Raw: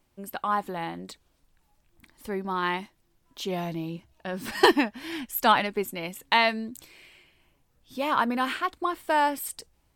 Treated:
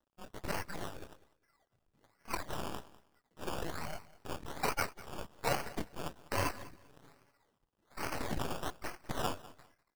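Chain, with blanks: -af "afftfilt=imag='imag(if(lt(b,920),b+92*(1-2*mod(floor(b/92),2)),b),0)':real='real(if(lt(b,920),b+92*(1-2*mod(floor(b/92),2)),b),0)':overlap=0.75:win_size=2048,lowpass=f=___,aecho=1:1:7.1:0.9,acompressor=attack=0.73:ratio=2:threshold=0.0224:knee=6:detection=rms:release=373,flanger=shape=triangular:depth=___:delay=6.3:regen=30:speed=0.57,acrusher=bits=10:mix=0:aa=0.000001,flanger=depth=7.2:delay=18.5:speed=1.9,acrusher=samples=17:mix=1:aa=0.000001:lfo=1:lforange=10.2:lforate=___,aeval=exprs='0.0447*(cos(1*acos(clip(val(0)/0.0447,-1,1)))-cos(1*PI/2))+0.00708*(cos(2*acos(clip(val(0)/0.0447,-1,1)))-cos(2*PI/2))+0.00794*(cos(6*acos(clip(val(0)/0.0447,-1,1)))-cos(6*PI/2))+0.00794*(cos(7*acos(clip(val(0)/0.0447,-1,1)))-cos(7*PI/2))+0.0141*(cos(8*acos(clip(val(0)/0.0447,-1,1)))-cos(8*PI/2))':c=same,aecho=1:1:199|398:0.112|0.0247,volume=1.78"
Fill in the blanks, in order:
2200, 6.6, 1.2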